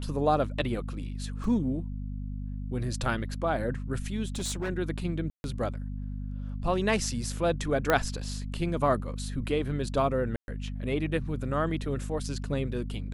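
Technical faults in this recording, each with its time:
hum 50 Hz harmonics 5 -35 dBFS
1.44 s: dropout 2 ms
4.28–4.70 s: clipped -27.5 dBFS
5.30–5.44 s: dropout 141 ms
7.90 s: pop -10 dBFS
10.36–10.48 s: dropout 121 ms

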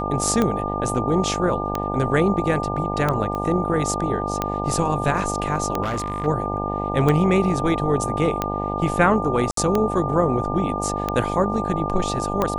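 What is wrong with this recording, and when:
buzz 50 Hz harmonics 18 -27 dBFS
tick 45 rpm -8 dBFS
whine 1.2 kHz -27 dBFS
3.35 s: pop -16 dBFS
5.82–6.27 s: clipped -20.5 dBFS
9.51–9.57 s: dropout 63 ms

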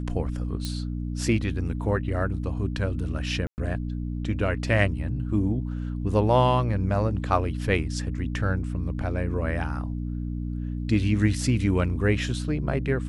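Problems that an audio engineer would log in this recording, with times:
hum 60 Hz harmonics 5 -30 dBFS
0.65 s: pop -16 dBFS
3.47–3.58 s: dropout 109 ms

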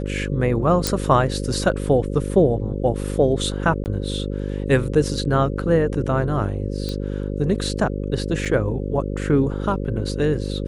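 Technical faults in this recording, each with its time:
buzz 50 Hz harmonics 11 -26 dBFS
0.87 s: pop
3.84–3.86 s: dropout 19 ms
6.89 s: pop -15 dBFS
8.45–8.46 s: dropout 5.9 ms

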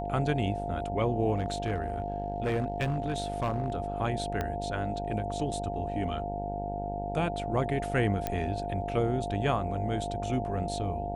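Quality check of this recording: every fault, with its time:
buzz 50 Hz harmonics 18 -37 dBFS
whine 700 Hz -35 dBFS
1.36–3.76 s: clipped -24 dBFS
4.41 s: pop -17 dBFS
8.27 s: pop -15 dBFS

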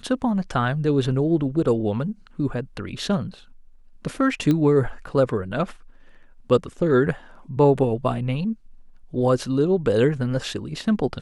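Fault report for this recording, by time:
4.51 s: pop -11 dBFS

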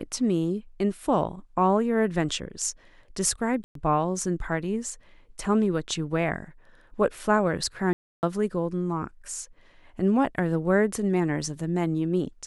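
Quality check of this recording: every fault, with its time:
3.64–3.75 s: dropout 113 ms
7.93–8.23 s: dropout 299 ms

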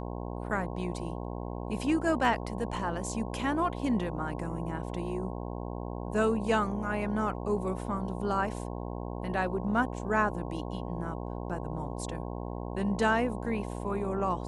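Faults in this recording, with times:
buzz 60 Hz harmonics 18 -37 dBFS

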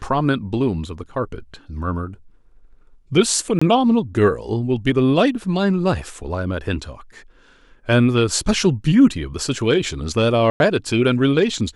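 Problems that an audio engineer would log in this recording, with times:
3.59–3.62 s: dropout 25 ms
10.50–10.60 s: dropout 101 ms

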